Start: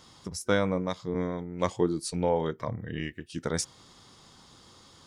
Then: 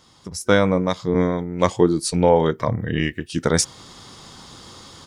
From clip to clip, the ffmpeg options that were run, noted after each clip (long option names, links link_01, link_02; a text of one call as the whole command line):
ffmpeg -i in.wav -af "dynaudnorm=framelen=240:gausssize=3:maxgain=12.5dB" out.wav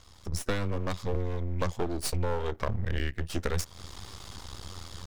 ffmpeg -i in.wav -af "lowshelf=frequency=110:width_type=q:width=3:gain=9.5,aeval=exprs='max(val(0),0)':channel_layout=same,acompressor=threshold=-25dB:ratio=6" out.wav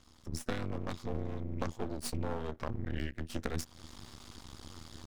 ffmpeg -i in.wav -af "tremolo=f=240:d=0.824,volume=-3.5dB" out.wav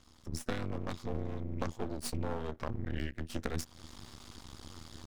ffmpeg -i in.wav -af anull out.wav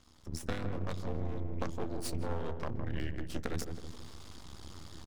ffmpeg -i in.wav -filter_complex "[0:a]asplit=2[link_01][link_02];[link_02]adelay=161,lowpass=frequency=830:poles=1,volume=-4dB,asplit=2[link_03][link_04];[link_04]adelay=161,lowpass=frequency=830:poles=1,volume=0.52,asplit=2[link_05][link_06];[link_06]adelay=161,lowpass=frequency=830:poles=1,volume=0.52,asplit=2[link_07][link_08];[link_08]adelay=161,lowpass=frequency=830:poles=1,volume=0.52,asplit=2[link_09][link_10];[link_10]adelay=161,lowpass=frequency=830:poles=1,volume=0.52,asplit=2[link_11][link_12];[link_12]adelay=161,lowpass=frequency=830:poles=1,volume=0.52,asplit=2[link_13][link_14];[link_14]adelay=161,lowpass=frequency=830:poles=1,volume=0.52[link_15];[link_01][link_03][link_05][link_07][link_09][link_11][link_13][link_15]amix=inputs=8:normalize=0,volume=-1dB" out.wav